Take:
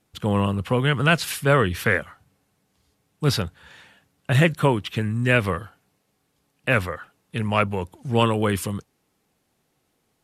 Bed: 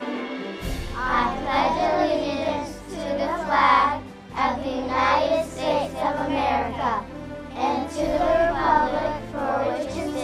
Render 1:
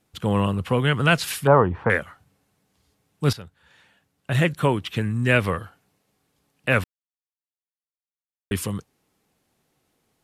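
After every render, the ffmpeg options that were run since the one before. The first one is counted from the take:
ffmpeg -i in.wav -filter_complex "[0:a]asettb=1/sr,asplit=3[link_01][link_02][link_03];[link_01]atrim=end=1.474[link_04];[link_02]atrim=start=1.47:end=1.9,asetpts=PTS-STARTPTS,afade=type=in:duration=0.004:curve=qsin,afade=type=out:start_time=0.426:duration=0.004:curve=qsin,lowpass=frequency=900:width_type=q:width=4.3[link_05];[link_03]atrim=start=1.896[link_06];[link_04][link_05]acrossfade=duration=0.004:curve1=hsin:curve2=qsin[link_07];[link_07][link_06]acrossfade=duration=0.004:curve1=qsin:curve2=hsin,asplit=4[link_08][link_09][link_10][link_11];[link_08]atrim=end=3.33,asetpts=PTS-STARTPTS,afade=type=out:start_time=3.326:duration=0.004:curve=hsin:silence=0.158489[link_12];[link_09]atrim=start=3.33:end=6.84,asetpts=PTS-STARTPTS,afade=type=in:duration=1.62:silence=0.158489,afade=type=out:start_time=3.506:duration=0.004:curve=hsin[link_13];[link_10]atrim=start=6.84:end=8.51,asetpts=PTS-STARTPTS,volume=0[link_14];[link_11]atrim=start=8.51,asetpts=PTS-STARTPTS,afade=type=in:duration=0.004:curve=hsin[link_15];[link_12][link_13][link_14][link_15]concat=n=4:v=0:a=1" out.wav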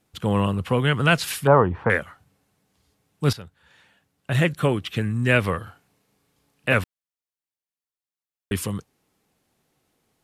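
ffmpeg -i in.wav -filter_complex "[0:a]asettb=1/sr,asplit=3[link_01][link_02][link_03];[link_01]atrim=end=4.544[link_04];[link_02]atrim=start=4.54:end=5.13,asetpts=PTS-STARTPTS,afade=type=in:duration=0.004:curve=qsin,afade=type=out:start_time=0.586:duration=0.004:curve=qsin,asuperstop=centerf=940:order=4:qfactor=7.9[link_05];[link_03]atrim=start=5.126[link_06];[link_04][link_05]acrossfade=duration=0.004:curve1=hsin:curve2=qsin[link_07];[link_07][link_06]acrossfade=duration=0.004:curve1=qsin:curve2=hsin,asettb=1/sr,asplit=3[link_08][link_09][link_10];[link_08]atrim=end=5.634[link_11];[link_09]atrim=start=5.63:end=6.74,asetpts=PTS-STARTPTS,afade=type=in:duration=0.004:curve=qsin,afade=type=out:start_time=1.106:duration=0.004:curve=qsin,asplit=2[link_12][link_13];[link_13]adelay=35,volume=-3dB[link_14];[link_12][link_14]amix=inputs=2:normalize=0,atrim=end_sample=48951[link_15];[link_10]atrim=start=6.736[link_16];[link_11][link_15]acrossfade=duration=0.004:curve1=hsin:curve2=qsin[link_17];[link_17][link_16]acrossfade=duration=0.004:curve1=qsin:curve2=hsin" out.wav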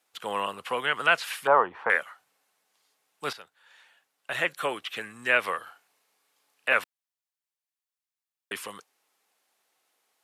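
ffmpeg -i in.wav -filter_complex "[0:a]acrossover=split=3100[link_01][link_02];[link_02]acompressor=threshold=-39dB:ratio=4:attack=1:release=60[link_03];[link_01][link_03]amix=inputs=2:normalize=0,highpass=730" out.wav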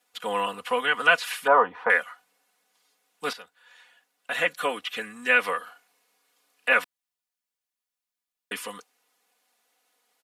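ffmpeg -i in.wav -af "aecho=1:1:4.1:0.88" out.wav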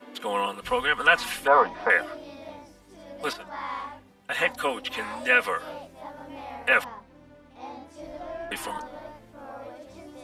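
ffmpeg -i in.wav -i bed.wav -filter_complex "[1:a]volume=-17dB[link_01];[0:a][link_01]amix=inputs=2:normalize=0" out.wav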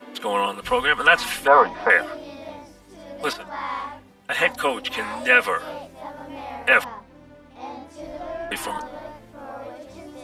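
ffmpeg -i in.wav -af "volume=4.5dB,alimiter=limit=-2dB:level=0:latency=1" out.wav

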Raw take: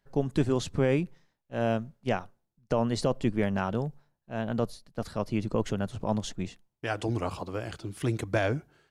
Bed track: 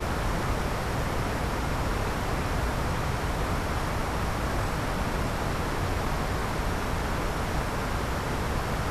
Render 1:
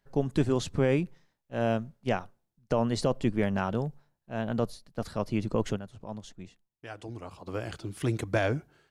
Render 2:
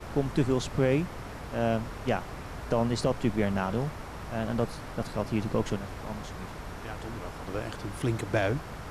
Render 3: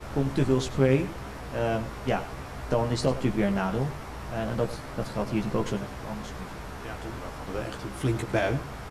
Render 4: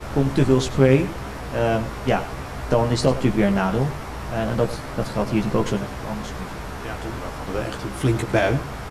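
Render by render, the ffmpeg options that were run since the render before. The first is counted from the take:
ffmpeg -i in.wav -filter_complex "[0:a]asplit=3[link_01][link_02][link_03];[link_01]atrim=end=5.9,asetpts=PTS-STARTPTS,afade=type=out:start_time=5.76:duration=0.14:curve=exp:silence=0.281838[link_04];[link_02]atrim=start=5.9:end=7.34,asetpts=PTS-STARTPTS,volume=-11dB[link_05];[link_03]atrim=start=7.34,asetpts=PTS-STARTPTS,afade=type=in:duration=0.14:curve=exp:silence=0.281838[link_06];[link_04][link_05][link_06]concat=n=3:v=0:a=1" out.wav
ffmpeg -i in.wav -i bed.wav -filter_complex "[1:a]volume=-11.5dB[link_01];[0:a][link_01]amix=inputs=2:normalize=0" out.wav
ffmpeg -i in.wav -filter_complex "[0:a]asplit=2[link_01][link_02];[link_02]adelay=15,volume=-4dB[link_03];[link_01][link_03]amix=inputs=2:normalize=0,asplit=2[link_04][link_05];[link_05]adelay=99.13,volume=-14dB,highshelf=frequency=4000:gain=-2.23[link_06];[link_04][link_06]amix=inputs=2:normalize=0" out.wav
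ffmpeg -i in.wav -af "volume=6.5dB" out.wav

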